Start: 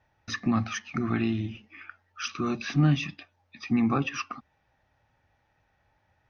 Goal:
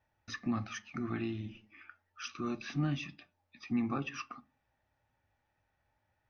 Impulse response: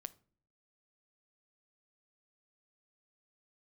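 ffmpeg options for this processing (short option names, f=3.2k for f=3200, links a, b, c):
-filter_complex "[1:a]atrim=start_sample=2205,asetrate=88200,aresample=44100[a];[0:a][a]afir=irnorm=-1:irlink=0,volume=1.5dB"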